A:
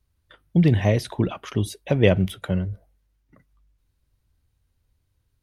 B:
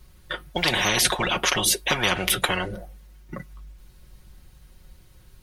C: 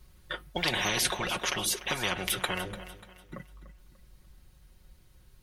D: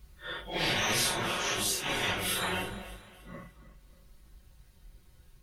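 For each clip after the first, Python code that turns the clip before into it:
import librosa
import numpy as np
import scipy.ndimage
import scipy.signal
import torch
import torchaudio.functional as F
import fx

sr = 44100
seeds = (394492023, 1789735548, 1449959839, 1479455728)

y1 = x + 0.72 * np.pad(x, (int(5.5 * sr / 1000.0), 0))[:len(x)]
y1 = fx.spectral_comp(y1, sr, ratio=10.0)
y1 = y1 * librosa.db_to_amplitude(-2.0)
y2 = fx.rider(y1, sr, range_db=5, speed_s=2.0)
y2 = fx.echo_feedback(y2, sr, ms=294, feedback_pct=38, wet_db=-14.5)
y2 = y2 * librosa.db_to_amplitude(-8.0)
y3 = fx.phase_scramble(y2, sr, seeds[0], window_ms=200)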